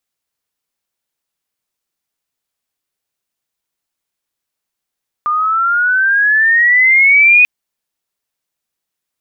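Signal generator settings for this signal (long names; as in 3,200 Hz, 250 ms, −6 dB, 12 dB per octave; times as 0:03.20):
glide logarithmic 1,200 Hz → 2,500 Hz −12 dBFS → −4 dBFS 2.19 s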